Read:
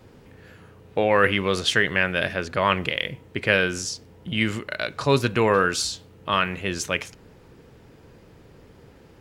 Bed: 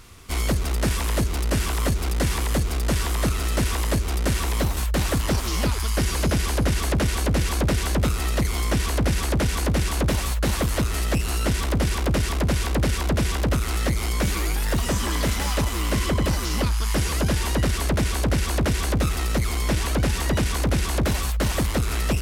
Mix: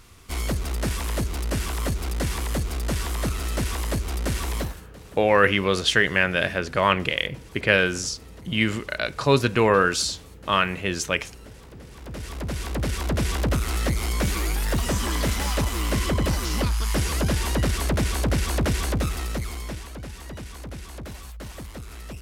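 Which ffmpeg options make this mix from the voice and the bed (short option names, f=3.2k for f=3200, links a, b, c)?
-filter_complex "[0:a]adelay=4200,volume=1dB[a];[1:a]volume=18.5dB,afade=t=out:st=4.57:d=0.24:silence=0.105925,afade=t=in:st=11.91:d=1.45:silence=0.0794328,afade=t=out:st=18.76:d=1.13:silence=0.199526[b];[a][b]amix=inputs=2:normalize=0"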